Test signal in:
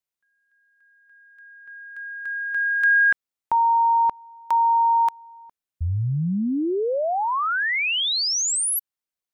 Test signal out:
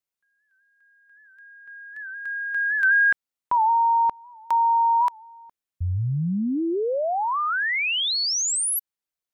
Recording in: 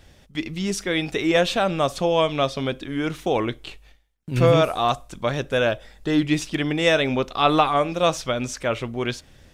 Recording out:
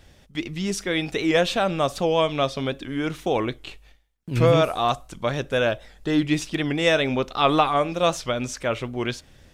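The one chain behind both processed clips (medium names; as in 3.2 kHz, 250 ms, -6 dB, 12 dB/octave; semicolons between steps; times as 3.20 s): warped record 78 rpm, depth 100 cents; trim -1 dB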